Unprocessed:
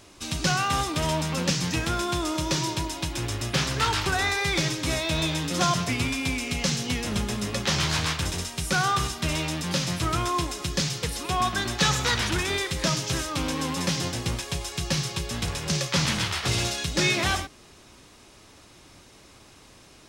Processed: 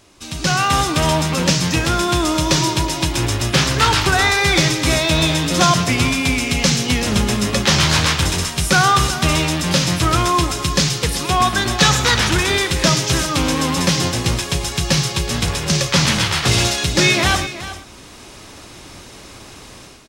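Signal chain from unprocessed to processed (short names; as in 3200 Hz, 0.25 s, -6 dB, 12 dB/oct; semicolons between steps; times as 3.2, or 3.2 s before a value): AGC gain up to 13 dB; on a send: echo 0.373 s -13.5 dB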